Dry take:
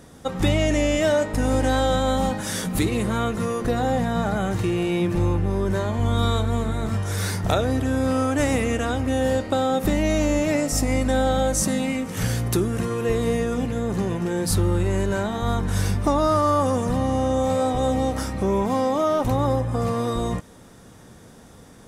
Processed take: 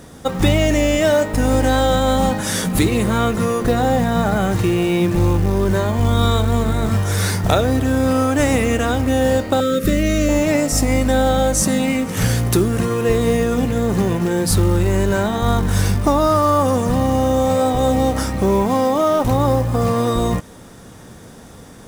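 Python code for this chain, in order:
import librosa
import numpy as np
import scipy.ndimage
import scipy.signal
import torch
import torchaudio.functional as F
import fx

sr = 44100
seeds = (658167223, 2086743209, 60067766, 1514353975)

p1 = fx.rider(x, sr, range_db=3, speed_s=0.5)
p2 = x + (p1 * librosa.db_to_amplitude(-1.0))
p3 = fx.ellip_bandstop(p2, sr, low_hz=600.0, high_hz=1200.0, order=3, stop_db=40, at=(9.6, 10.29))
y = fx.quant_companded(p3, sr, bits=6)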